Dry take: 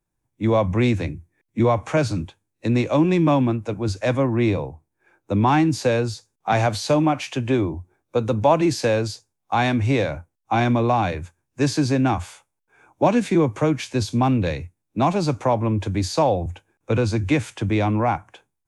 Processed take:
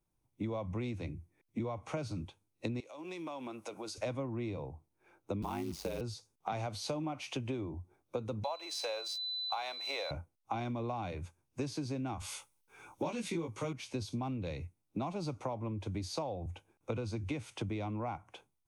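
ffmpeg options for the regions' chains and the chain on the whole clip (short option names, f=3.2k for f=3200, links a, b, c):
-filter_complex "[0:a]asettb=1/sr,asplit=3[a][b][c];[a]atrim=end=2.804[d];[b]atrim=start=2.8:end=3.98,asetpts=PTS-STARTPTS,afade=t=in:d=0.004:c=qsin,afade=t=out:st=1.176:d=0.004:c=qsin,highpass=470,aemphasis=mode=production:type=cd,acompressor=threshold=-36dB:ratio=8:attack=3.2:release=140:knee=1:detection=peak[e];[c]atrim=start=3.976[f];[d][e]acrossfade=d=0.004:c1=hsin:c2=qsin[g];[g][f]acrossfade=d=0.004:c1=qsin:c2=hsin,asettb=1/sr,asplit=3[h][i][j];[h]atrim=end=5.424[k];[i]atrim=start=5.42:end=6.01,asetpts=PTS-STARTPTS,afade=t=in:d=0.004:c=qsin,afade=t=out:st=0.586:d=0.004:c=qsin,highpass=55,acrusher=bits=6:dc=4:mix=0:aa=0.000001,aeval=exprs='val(0)*sin(2*PI*48*n/s)':c=same[l];[j]atrim=start=6.006[m];[k][l]acrossfade=d=0.004:c1=hsin:c2=qsin[n];[n][m]acrossfade=d=0.004:c1=qsin:c2=hsin,asettb=1/sr,asplit=3[o][p][q];[o]atrim=end=8.444[r];[p]atrim=start=8.44:end=10.11,asetpts=PTS-STARTPTS,afade=t=in:d=0.004:c=qsin,afade=t=out:st=1.666:d=0.004:c=qsin,highpass=f=570:w=0.5412,highpass=f=570:w=1.3066,aeval=exprs='sgn(val(0))*max(abs(val(0))-0.00398,0)':c=same,aeval=exprs='val(0)+0.0282*sin(2*PI*4000*n/s)':c=same[s];[q]atrim=start=10.106[t];[r][s]acrossfade=d=0.004:c1=hsin:c2=qsin[u];[u][t]acrossfade=d=0.004:c1=qsin:c2=hsin,asettb=1/sr,asplit=3[v][w][x];[v]atrim=end=12.204[y];[w]atrim=start=12.2:end=13.73,asetpts=PTS-STARTPTS,afade=t=in:d=0.004:c=qsin,afade=t=out:st=1.526:d=0.004:c=qsin,highshelf=f=2k:g=9,bandreject=f=680:w=6,asplit=2[z][aa];[aa]adelay=18,volume=-2dB[ab];[z][ab]amix=inputs=2:normalize=0,atrim=end_sample=67473[ac];[x]atrim=start=13.726[ad];[y][ac]acrossfade=d=0.004:c1=hsin:c2=qsin[ae];[ae][ad]acrossfade=d=0.004:c1=qsin:c2=hsin,equalizer=f=1.7k:t=o:w=0.23:g=-12,bandreject=f=7.3k:w=8.3,acompressor=threshold=-32dB:ratio=8,volume=-3dB"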